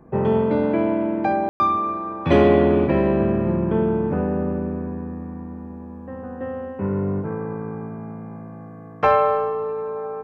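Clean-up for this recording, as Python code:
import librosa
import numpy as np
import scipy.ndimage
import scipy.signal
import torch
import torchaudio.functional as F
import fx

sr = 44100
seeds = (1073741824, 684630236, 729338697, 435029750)

y = fx.fix_ambience(x, sr, seeds[0], print_start_s=8.52, print_end_s=9.02, start_s=1.49, end_s=1.6)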